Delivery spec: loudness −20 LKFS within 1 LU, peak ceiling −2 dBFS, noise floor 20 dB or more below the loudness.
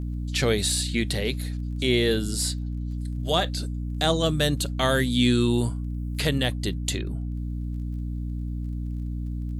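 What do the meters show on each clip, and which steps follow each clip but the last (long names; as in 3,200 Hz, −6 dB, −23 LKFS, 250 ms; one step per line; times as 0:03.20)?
crackle rate 20 per second; mains hum 60 Hz; hum harmonics up to 300 Hz; level of the hum −27 dBFS; integrated loudness −26.0 LKFS; sample peak −7.5 dBFS; target loudness −20.0 LKFS
→ click removal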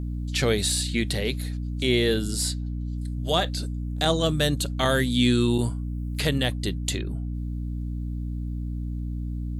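crackle rate 0.21 per second; mains hum 60 Hz; hum harmonics up to 300 Hz; level of the hum −27 dBFS
→ hum removal 60 Hz, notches 5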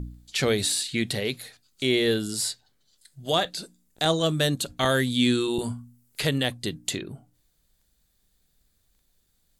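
mains hum none found; integrated loudness −25.5 LKFS; sample peak −8.5 dBFS; target loudness −20.0 LKFS
→ level +5.5 dB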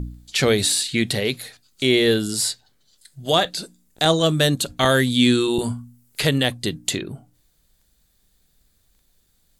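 integrated loudness −20.0 LKFS; sample peak −3.0 dBFS; background noise floor −64 dBFS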